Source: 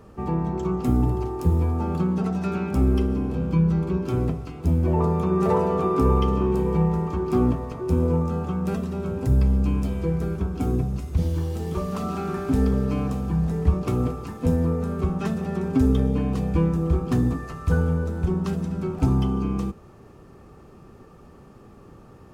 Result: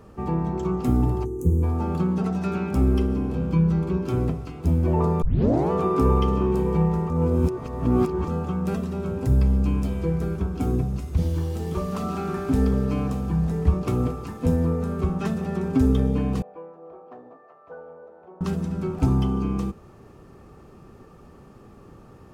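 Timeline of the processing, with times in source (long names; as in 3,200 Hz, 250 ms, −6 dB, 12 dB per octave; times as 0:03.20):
0:01.25–0:01.63: gain on a spectral selection 510–5,900 Hz −19 dB
0:05.22: tape start 0.49 s
0:07.10–0:08.28: reverse
0:16.42–0:18.41: four-pole ladder band-pass 710 Hz, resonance 55%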